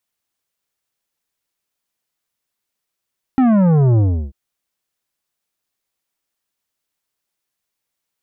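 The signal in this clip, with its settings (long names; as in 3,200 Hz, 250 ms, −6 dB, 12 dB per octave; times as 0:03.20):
bass drop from 270 Hz, over 0.94 s, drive 11 dB, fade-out 0.34 s, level −11 dB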